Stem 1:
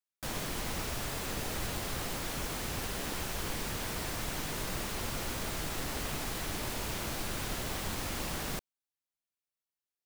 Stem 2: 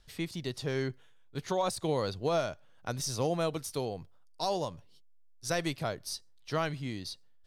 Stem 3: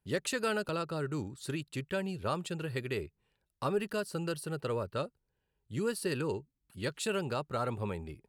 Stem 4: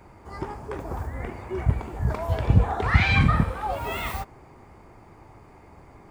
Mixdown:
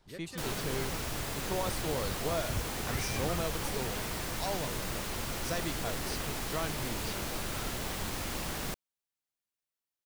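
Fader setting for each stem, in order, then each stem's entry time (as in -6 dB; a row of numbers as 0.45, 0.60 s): 0.0, -5.0, -14.0, -19.5 dB; 0.15, 0.00, 0.00, 0.00 s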